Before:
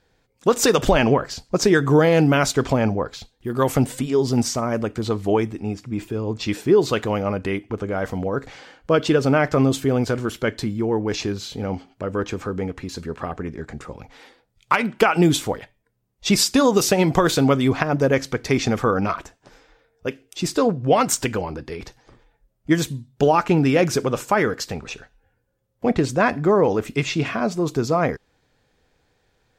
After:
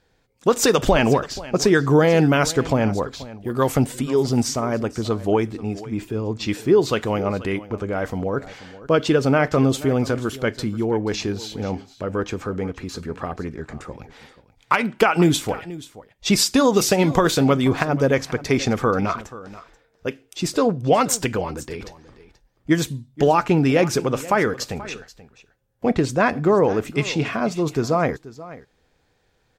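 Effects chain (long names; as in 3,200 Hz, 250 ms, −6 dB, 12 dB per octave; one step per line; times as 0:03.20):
single-tap delay 482 ms −17.5 dB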